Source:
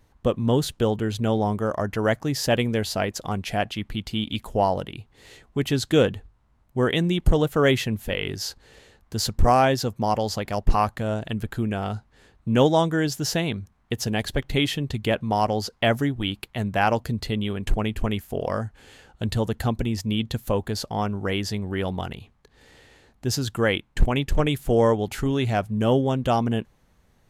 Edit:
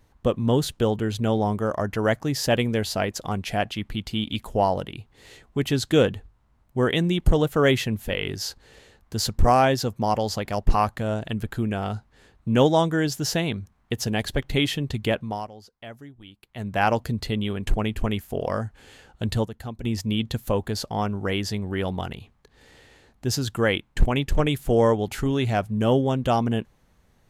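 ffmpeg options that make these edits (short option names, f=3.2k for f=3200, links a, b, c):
-filter_complex "[0:a]asplit=5[a][b][c][d][e];[a]atrim=end=15.5,asetpts=PTS-STARTPTS,afade=t=out:st=15.08:d=0.42:silence=0.105925[f];[b]atrim=start=15.5:end=16.42,asetpts=PTS-STARTPTS,volume=-19.5dB[g];[c]atrim=start=16.42:end=19.452,asetpts=PTS-STARTPTS,afade=t=in:d=0.42:silence=0.105925[h];[d]atrim=start=19.448:end=19.842,asetpts=PTS-STARTPTS,volume=-10.5dB[i];[e]atrim=start=19.838[j];[f][g][h]concat=n=3:v=0:a=1[k];[k][i]acrossfade=d=0.004:c1=hsin:c2=hsin[l];[l][j]acrossfade=d=0.004:c1=hsin:c2=hsin"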